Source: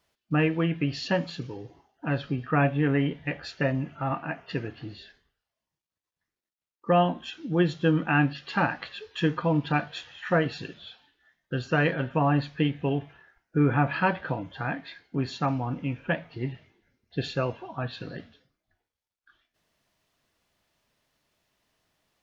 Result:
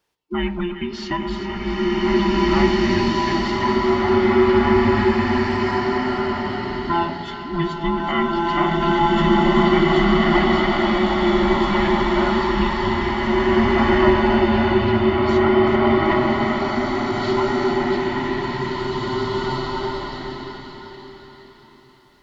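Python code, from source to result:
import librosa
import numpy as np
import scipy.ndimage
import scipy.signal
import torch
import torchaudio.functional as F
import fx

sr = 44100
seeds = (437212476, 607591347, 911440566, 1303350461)

y = fx.band_invert(x, sr, width_hz=500)
y = fx.echo_split(y, sr, split_hz=1200.0, low_ms=110, high_ms=383, feedback_pct=52, wet_db=-9.5)
y = fx.rev_bloom(y, sr, seeds[0], attack_ms=2170, drr_db=-8.5)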